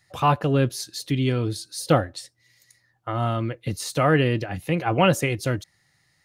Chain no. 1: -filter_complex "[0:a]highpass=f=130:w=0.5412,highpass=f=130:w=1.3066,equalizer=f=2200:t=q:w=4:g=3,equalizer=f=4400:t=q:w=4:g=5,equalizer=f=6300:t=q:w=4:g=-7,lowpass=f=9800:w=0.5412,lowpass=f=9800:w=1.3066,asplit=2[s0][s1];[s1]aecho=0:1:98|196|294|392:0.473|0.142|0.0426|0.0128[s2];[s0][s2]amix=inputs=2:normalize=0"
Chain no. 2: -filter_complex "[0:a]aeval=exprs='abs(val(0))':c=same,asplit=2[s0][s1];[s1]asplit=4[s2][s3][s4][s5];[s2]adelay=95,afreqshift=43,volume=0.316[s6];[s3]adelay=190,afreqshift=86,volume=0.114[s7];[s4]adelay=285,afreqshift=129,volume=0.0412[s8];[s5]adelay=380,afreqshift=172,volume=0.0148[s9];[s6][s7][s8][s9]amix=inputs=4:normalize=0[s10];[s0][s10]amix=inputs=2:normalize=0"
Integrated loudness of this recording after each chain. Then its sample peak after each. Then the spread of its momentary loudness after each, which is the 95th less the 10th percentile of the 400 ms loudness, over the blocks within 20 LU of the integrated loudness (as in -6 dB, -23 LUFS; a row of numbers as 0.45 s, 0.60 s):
-23.0 LUFS, -27.0 LUFS; -3.0 dBFS, -4.0 dBFS; 12 LU, 11 LU